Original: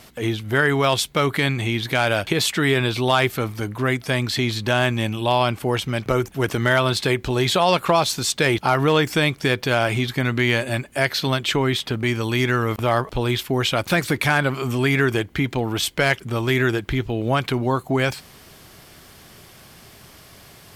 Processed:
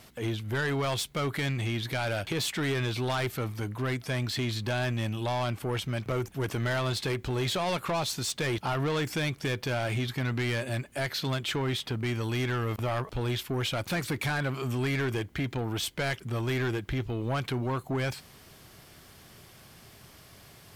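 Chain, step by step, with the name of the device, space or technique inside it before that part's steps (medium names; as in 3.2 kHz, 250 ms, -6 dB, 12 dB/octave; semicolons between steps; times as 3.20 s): open-reel tape (saturation -18 dBFS, distortion -10 dB; peaking EQ 110 Hz +3 dB 1.02 oct; white noise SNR 47 dB); trim -7 dB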